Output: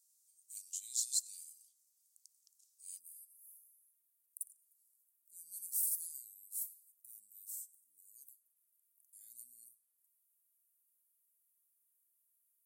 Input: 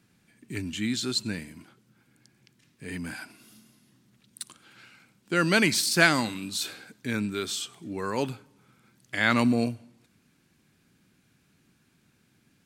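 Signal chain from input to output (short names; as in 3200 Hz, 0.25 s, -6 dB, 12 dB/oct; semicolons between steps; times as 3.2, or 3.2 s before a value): inverse Chebyshev high-pass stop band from 1600 Hz, stop band 70 dB, from 2.98 s stop band from 3000 Hz; gain +4.5 dB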